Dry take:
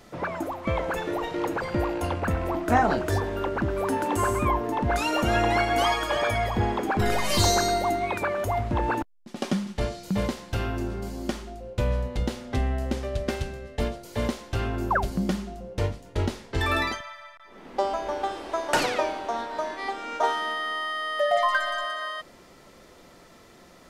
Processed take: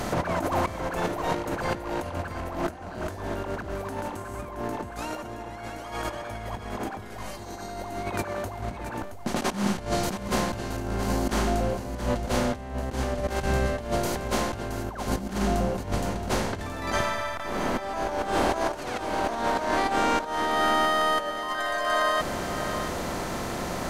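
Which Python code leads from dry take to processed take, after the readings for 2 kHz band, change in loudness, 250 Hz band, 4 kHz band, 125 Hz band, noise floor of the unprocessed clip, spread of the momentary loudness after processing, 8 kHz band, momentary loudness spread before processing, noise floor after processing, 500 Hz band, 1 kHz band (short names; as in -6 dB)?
-1.5 dB, -1.5 dB, -0.5 dB, -2.0 dB, -3.0 dB, -52 dBFS, 11 LU, -1.0 dB, 10 LU, -38 dBFS, -1.5 dB, -1.0 dB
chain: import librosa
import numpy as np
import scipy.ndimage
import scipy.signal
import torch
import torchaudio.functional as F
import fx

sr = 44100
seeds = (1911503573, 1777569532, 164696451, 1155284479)

p1 = fx.bin_compress(x, sr, power=0.6)
p2 = fx.peak_eq(p1, sr, hz=3300.0, db=-5.5, octaves=2.0)
p3 = fx.over_compress(p2, sr, threshold_db=-28.0, ratio=-0.5)
y = p3 + fx.echo_single(p3, sr, ms=672, db=-10.0, dry=0)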